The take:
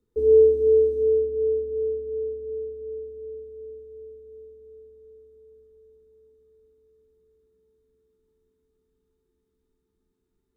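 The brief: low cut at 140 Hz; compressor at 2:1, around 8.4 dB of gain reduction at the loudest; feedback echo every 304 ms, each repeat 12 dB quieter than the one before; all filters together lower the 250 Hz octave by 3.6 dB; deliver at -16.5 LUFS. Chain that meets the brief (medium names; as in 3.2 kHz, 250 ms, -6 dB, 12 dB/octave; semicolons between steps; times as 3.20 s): high-pass 140 Hz; peaking EQ 250 Hz -5.5 dB; compression 2:1, threshold -29 dBFS; feedback delay 304 ms, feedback 25%, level -12 dB; trim +14.5 dB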